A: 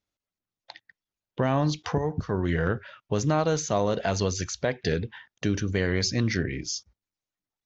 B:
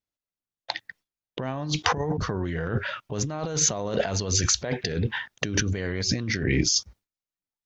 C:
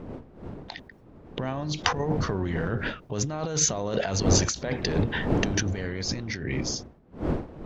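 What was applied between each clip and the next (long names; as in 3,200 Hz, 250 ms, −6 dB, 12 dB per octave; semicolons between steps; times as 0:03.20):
compressor whose output falls as the input rises −34 dBFS, ratio −1; noise gate with hold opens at −51 dBFS; level +7 dB
fade-out on the ending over 2.51 s; wind on the microphone 340 Hz −33 dBFS; every ending faded ahead of time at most 160 dB per second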